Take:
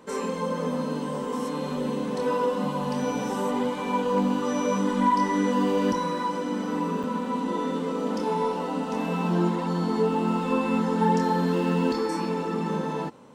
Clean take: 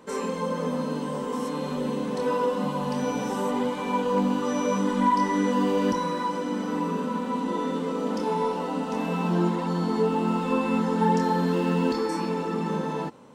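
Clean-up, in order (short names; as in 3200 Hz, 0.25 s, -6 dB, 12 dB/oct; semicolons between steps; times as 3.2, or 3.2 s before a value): interpolate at 7.03, 5.2 ms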